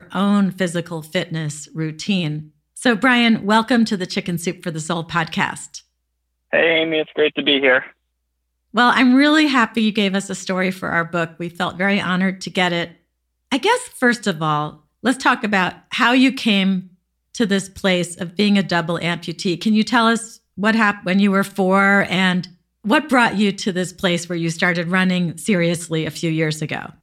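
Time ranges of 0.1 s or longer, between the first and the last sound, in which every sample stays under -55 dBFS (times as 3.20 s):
2.56–2.76 s
5.85–6.51 s
7.93–8.73 s
13.01–13.51 s
14.85–15.03 s
16.96–17.34 s
20.40–20.57 s
22.61–22.84 s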